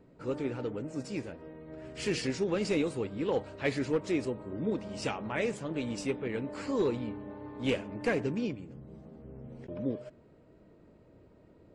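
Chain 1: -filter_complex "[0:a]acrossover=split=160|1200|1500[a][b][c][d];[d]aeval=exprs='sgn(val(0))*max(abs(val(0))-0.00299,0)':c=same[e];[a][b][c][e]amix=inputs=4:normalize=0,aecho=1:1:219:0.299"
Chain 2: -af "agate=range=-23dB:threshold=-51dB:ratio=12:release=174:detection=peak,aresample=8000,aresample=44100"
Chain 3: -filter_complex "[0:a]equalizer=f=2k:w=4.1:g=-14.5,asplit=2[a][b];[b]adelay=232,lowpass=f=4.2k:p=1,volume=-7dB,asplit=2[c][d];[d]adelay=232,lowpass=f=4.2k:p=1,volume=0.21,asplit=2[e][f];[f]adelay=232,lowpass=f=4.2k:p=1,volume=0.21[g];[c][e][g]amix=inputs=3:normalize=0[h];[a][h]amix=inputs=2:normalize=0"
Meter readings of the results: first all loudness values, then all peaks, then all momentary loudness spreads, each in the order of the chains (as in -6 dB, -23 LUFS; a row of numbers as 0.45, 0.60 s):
-33.5, -34.0, -33.5 LUFS; -17.0, -15.5, -17.5 dBFS; 15, 16, 14 LU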